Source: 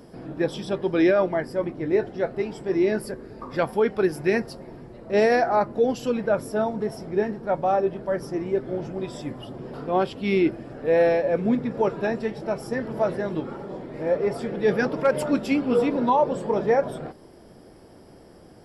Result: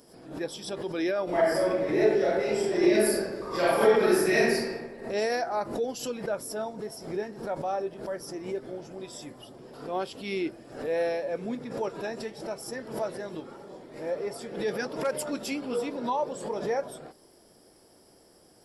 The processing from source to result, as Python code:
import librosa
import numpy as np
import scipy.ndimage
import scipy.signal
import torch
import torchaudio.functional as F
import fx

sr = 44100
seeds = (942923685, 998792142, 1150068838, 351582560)

y = fx.reverb_throw(x, sr, start_s=1.25, length_s=3.48, rt60_s=1.3, drr_db=-10.0)
y = fx.bass_treble(y, sr, bass_db=-7, treble_db=13)
y = fx.pre_swell(y, sr, db_per_s=98.0)
y = F.gain(torch.from_numpy(y), -8.5).numpy()